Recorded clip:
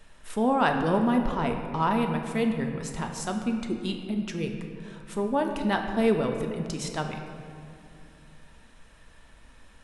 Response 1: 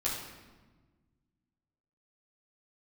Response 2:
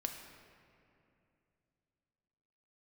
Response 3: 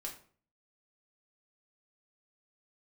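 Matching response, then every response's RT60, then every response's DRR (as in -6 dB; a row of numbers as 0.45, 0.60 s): 2; 1.3, 2.7, 0.45 s; -7.5, 3.5, -1.5 dB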